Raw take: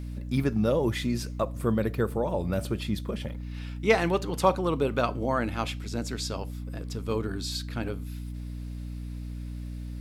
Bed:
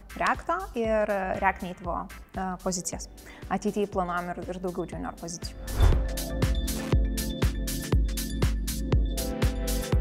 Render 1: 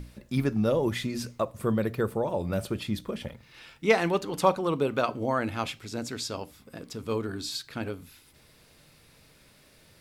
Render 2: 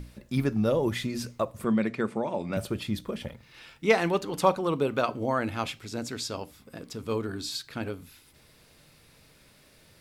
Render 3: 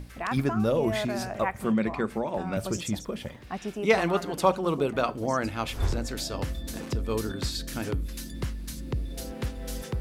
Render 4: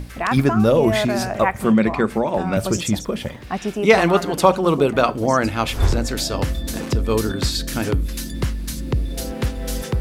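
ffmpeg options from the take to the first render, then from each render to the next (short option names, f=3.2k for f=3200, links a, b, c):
-af "bandreject=f=60:t=h:w=6,bandreject=f=120:t=h:w=6,bandreject=f=180:t=h:w=6,bandreject=f=240:t=h:w=6,bandreject=f=300:t=h:w=6"
-filter_complex "[0:a]asettb=1/sr,asplit=3[a][b][c];[a]atrim=end=1.644[d];[b]atrim=start=1.64:end=2.57,asetpts=PTS-STARTPTS,afade=t=in:d=0.004:c=qsin,afade=t=out:st=0.926:d=0.004:c=qsin,highpass=190,equalizer=f=220:t=q:w=4:g=6,equalizer=f=480:t=q:w=4:g=-5,equalizer=f=2.2k:t=q:w=4:g=9,lowpass=f=8.4k:w=0.5412,lowpass=f=8.4k:w=1.3066[e];[c]atrim=start=2.566[f];[d][e]acrossfade=d=0.004:c1=hsin:c2=qsin[g];[g][f]acrossfade=d=0.004:c1=qsin:c2=hsin"
-filter_complex "[1:a]volume=-6.5dB[a];[0:a][a]amix=inputs=2:normalize=0"
-af "volume=9.5dB,alimiter=limit=-1dB:level=0:latency=1"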